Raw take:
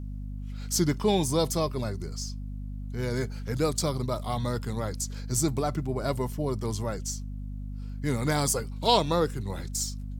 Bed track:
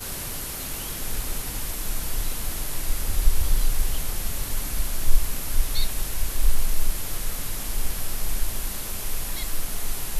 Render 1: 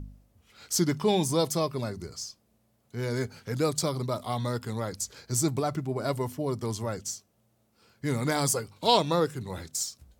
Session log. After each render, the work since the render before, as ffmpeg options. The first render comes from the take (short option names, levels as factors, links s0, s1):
-af "bandreject=f=50:t=h:w=4,bandreject=f=100:t=h:w=4,bandreject=f=150:t=h:w=4,bandreject=f=200:t=h:w=4,bandreject=f=250:t=h:w=4"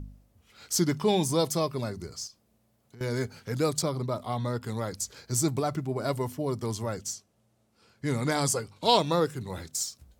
-filter_complex "[0:a]asettb=1/sr,asplit=3[s0][s1][s2];[s0]atrim=end=2.274[s3];[s1]atrim=start=2.27:end=3.01,asetpts=PTS-STARTPTS,afade=t=in:d=0.004:c=qsin,afade=t=out:st=0.736:d=0.004:c=qsin,acompressor=threshold=0.00447:ratio=5:attack=3.2:release=140:knee=1:detection=peak[s4];[s2]atrim=start=3.006[s5];[s3][s4]acrossfade=d=0.004:c1=hsin:c2=qsin[s6];[s6][s5]acrossfade=d=0.004:c1=qsin:c2=hsin,asettb=1/sr,asplit=3[s7][s8][s9];[s7]atrim=end=3.824[s10];[s8]atrim=start=3.82:end=4.64,asetpts=PTS-STARTPTS,afade=t=in:d=0.004:c=qsin,afade=t=out:st=0.816:d=0.004:c=qsin,highshelf=f=3000:g=-7.5[s11];[s9]atrim=start=4.636[s12];[s10][s11]acrossfade=d=0.004:c1=hsin:c2=qsin[s13];[s13][s12]acrossfade=d=0.004:c1=qsin:c2=hsin,asettb=1/sr,asplit=3[s14][s15][s16];[s14]atrim=end=7.134[s17];[s15]atrim=start=7.13:end=8.87,asetpts=PTS-STARTPTS,afade=t=in:d=0.004:c=qsin,afade=t=out:st=1.736:d=0.004:c=qsin,lowpass=11000[s18];[s16]atrim=start=8.866[s19];[s17][s18]acrossfade=d=0.004:c1=hsin:c2=qsin[s20];[s20][s19]acrossfade=d=0.004:c1=qsin:c2=hsin"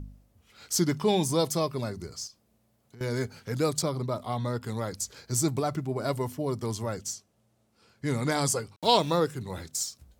-filter_complex "[0:a]asettb=1/sr,asplit=3[s0][s1][s2];[s0]atrim=end=8.764[s3];[s1]atrim=start=8.76:end=9.18,asetpts=PTS-STARTPTS,afade=t=in:d=0.004:c=qsin,afade=t=out:st=0.416:d=0.004:c=qsin,aeval=exprs='val(0)*gte(abs(val(0)),0.0075)':c=same[s4];[s2]atrim=start=9.176[s5];[s3][s4]acrossfade=d=0.004:c1=hsin:c2=qsin[s6];[s6][s5]acrossfade=d=0.004:c1=qsin:c2=hsin"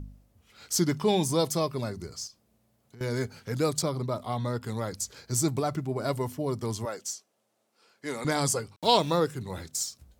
-filter_complex "[0:a]asettb=1/sr,asplit=3[s0][s1][s2];[s0]atrim=end=6.854[s3];[s1]atrim=start=6.85:end=8.25,asetpts=PTS-STARTPTS,afade=t=in:d=0.004:c=qsin,afade=t=out:st=1.396:d=0.004:c=qsin,highpass=380[s4];[s2]atrim=start=8.246[s5];[s3][s4]acrossfade=d=0.004:c1=hsin:c2=qsin[s6];[s6][s5]acrossfade=d=0.004:c1=qsin:c2=hsin"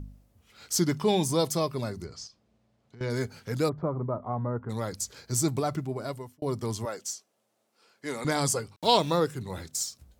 -filter_complex "[0:a]asettb=1/sr,asplit=3[s0][s1][s2];[s0]atrim=end=2.044[s3];[s1]atrim=start=2.04:end=3.1,asetpts=PTS-STARTPTS,afade=t=in:d=0.004:c=qsin,afade=t=out:st=1.056:d=0.004:c=qsin,lowpass=4900[s4];[s2]atrim=start=3.096[s5];[s3][s4]acrossfade=d=0.004:c1=hsin:c2=qsin[s6];[s6][s5]acrossfade=d=0.004:c1=qsin:c2=hsin,asplit=3[s7][s8][s9];[s7]afade=t=out:st=3.68:d=0.02[s10];[s8]lowpass=f=1400:w=0.5412,lowpass=f=1400:w=1.3066,afade=t=in:st=3.68:d=0.02,afade=t=out:st=4.69:d=0.02[s11];[s9]afade=t=in:st=4.69:d=0.02[s12];[s10][s11][s12]amix=inputs=3:normalize=0,asplit=2[s13][s14];[s13]atrim=end=6.42,asetpts=PTS-STARTPTS,afade=t=out:st=5.79:d=0.63[s15];[s14]atrim=start=6.42,asetpts=PTS-STARTPTS,afade=t=in:d=0.004:c=hsin[s16];[s15][s16]concat=n=2:v=0:a=1"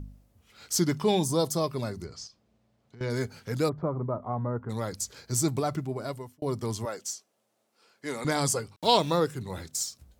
-filter_complex "[0:a]asettb=1/sr,asplit=3[s0][s1][s2];[s0]atrim=end=1.194[s3];[s1]atrim=start=1.19:end=1.64,asetpts=PTS-STARTPTS,afade=t=in:d=0.004:c=qsin,afade=t=out:st=0.446:d=0.004:c=qsin,equalizer=f=2300:t=o:w=0.86:g=-8.5[s4];[s2]atrim=start=1.636[s5];[s3][s4]acrossfade=d=0.004:c1=hsin:c2=qsin[s6];[s6][s5]acrossfade=d=0.004:c1=qsin:c2=hsin"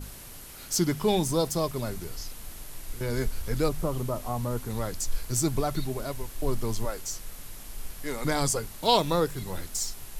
-filter_complex "[1:a]volume=0.237[s0];[0:a][s0]amix=inputs=2:normalize=0"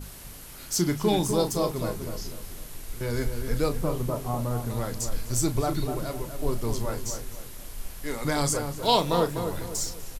-filter_complex "[0:a]asplit=2[s0][s1];[s1]adelay=34,volume=0.299[s2];[s0][s2]amix=inputs=2:normalize=0,asplit=2[s3][s4];[s4]adelay=249,lowpass=f=1400:p=1,volume=0.473,asplit=2[s5][s6];[s6]adelay=249,lowpass=f=1400:p=1,volume=0.41,asplit=2[s7][s8];[s8]adelay=249,lowpass=f=1400:p=1,volume=0.41,asplit=2[s9][s10];[s10]adelay=249,lowpass=f=1400:p=1,volume=0.41,asplit=2[s11][s12];[s12]adelay=249,lowpass=f=1400:p=1,volume=0.41[s13];[s5][s7][s9][s11][s13]amix=inputs=5:normalize=0[s14];[s3][s14]amix=inputs=2:normalize=0"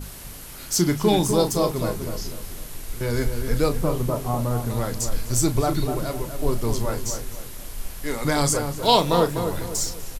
-af "volume=1.68"